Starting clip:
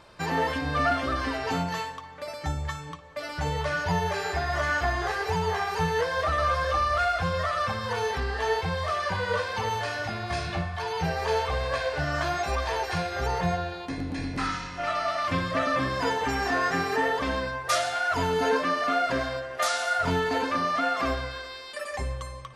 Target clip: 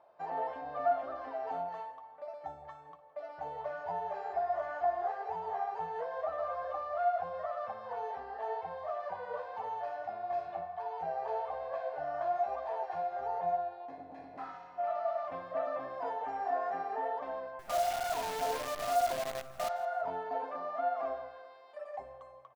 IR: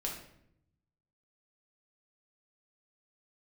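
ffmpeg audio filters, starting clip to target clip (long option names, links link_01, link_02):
-filter_complex "[0:a]bandpass=frequency=710:width_type=q:width=5.1:csg=0,asettb=1/sr,asplit=3[link_01][link_02][link_03];[link_01]atrim=end=17.594[link_04];[link_02]atrim=start=17.59:end=19.69,asetpts=PTS-STARTPTS,afade=type=in:duration=0.004:curve=qsin,afade=type=out:start_time=2.096:duration=0.004:curve=qsin,acrusher=bits=7:dc=4:mix=0:aa=0.000001[link_05];[link_03]atrim=start=19.686[link_06];[link_04][link_05]acrossfade=duration=0.004:curve1=hsin:curve2=qsin[link_07];[link_07][link_06]acrossfade=duration=0.004:curve1=qsin:curve2=hsin,aecho=1:1:165|330:0.112|0.0292"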